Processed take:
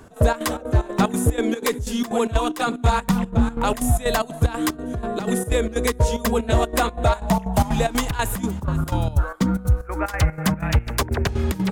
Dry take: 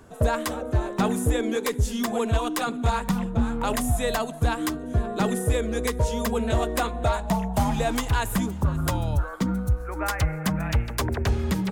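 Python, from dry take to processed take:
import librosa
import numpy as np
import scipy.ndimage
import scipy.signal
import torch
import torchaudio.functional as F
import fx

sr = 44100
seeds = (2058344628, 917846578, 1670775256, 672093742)

y = fx.step_gate(x, sr, bpm=185, pattern='x.xx.xx.x', floor_db=-12.0, edge_ms=4.5)
y = y * 10.0 ** (5.0 / 20.0)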